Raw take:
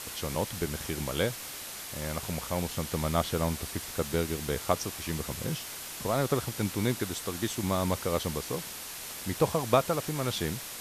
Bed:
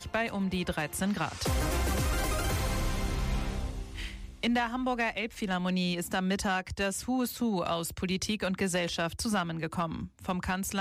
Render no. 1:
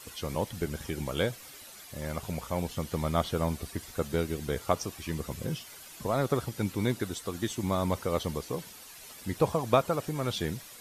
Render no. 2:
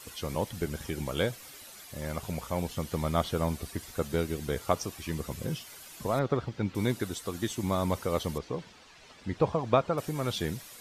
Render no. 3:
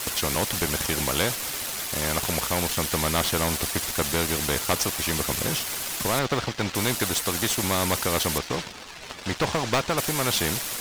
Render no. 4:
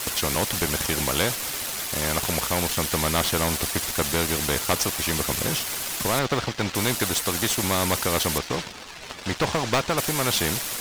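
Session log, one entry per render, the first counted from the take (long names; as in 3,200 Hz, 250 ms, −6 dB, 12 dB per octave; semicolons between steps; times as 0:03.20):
broadband denoise 11 dB, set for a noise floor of −41 dBFS
0:06.19–0:06.75: high-frequency loss of the air 170 metres; 0:08.38–0:09.98: high-frequency loss of the air 140 metres
leveller curve on the samples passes 2; every bin compressed towards the loudest bin 2 to 1
level +1 dB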